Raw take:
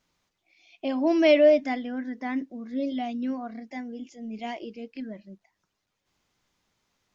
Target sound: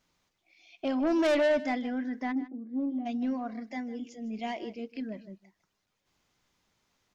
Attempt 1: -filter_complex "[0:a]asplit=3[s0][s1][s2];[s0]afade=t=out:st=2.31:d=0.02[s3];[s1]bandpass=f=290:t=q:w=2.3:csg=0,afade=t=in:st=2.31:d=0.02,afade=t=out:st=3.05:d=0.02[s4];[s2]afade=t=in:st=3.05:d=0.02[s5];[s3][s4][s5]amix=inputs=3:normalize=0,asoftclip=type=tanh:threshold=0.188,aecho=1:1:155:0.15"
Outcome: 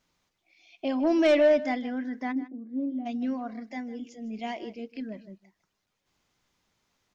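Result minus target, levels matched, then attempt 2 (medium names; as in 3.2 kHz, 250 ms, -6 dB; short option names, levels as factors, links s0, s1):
saturation: distortion -8 dB
-filter_complex "[0:a]asplit=3[s0][s1][s2];[s0]afade=t=out:st=2.31:d=0.02[s3];[s1]bandpass=f=290:t=q:w=2.3:csg=0,afade=t=in:st=2.31:d=0.02,afade=t=out:st=3.05:d=0.02[s4];[s2]afade=t=in:st=3.05:d=0.02[s5];[s3][s4][s5]amix=inputs=3:normalize=0,asoftclip=type=tanh:threshold=0.0794,aecho=1:1:155:0.15"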